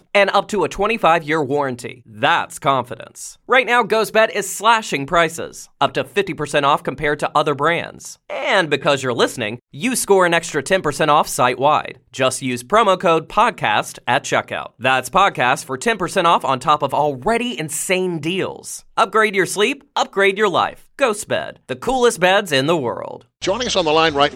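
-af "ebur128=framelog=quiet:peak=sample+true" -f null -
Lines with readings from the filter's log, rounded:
Integrated loudness:
  I:         -17.5 LUFS
  Threshold: -27.7 LUFS
Loudness range:
  LRA:         2.1 LU
  Threshold: -37.8 LUFS
  LRA low:   -18.8 LUFS
  LRA high:  -16.8 LUFS
Sample peak:
  Peak:       -1.3 dBFS
True peak:
  Peak:       -1.3 dBFS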